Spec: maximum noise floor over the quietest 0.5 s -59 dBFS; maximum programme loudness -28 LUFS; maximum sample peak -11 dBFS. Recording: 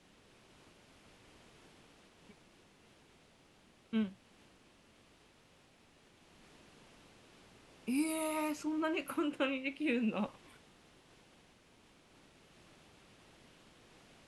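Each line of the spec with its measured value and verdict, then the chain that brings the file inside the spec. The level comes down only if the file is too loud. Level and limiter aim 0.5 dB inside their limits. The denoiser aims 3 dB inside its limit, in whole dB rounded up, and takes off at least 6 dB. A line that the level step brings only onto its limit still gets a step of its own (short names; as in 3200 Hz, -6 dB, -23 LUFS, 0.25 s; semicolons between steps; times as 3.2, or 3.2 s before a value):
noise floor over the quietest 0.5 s -65 dBFS: OK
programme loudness -36.5 LUFS: OK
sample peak -21.0 dBFS: OK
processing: none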